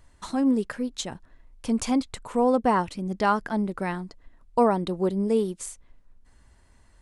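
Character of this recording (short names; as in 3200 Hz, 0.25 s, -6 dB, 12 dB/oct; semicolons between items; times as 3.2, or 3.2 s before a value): noise floor -58 dBFS; spectral tilt -5.5 dB/oct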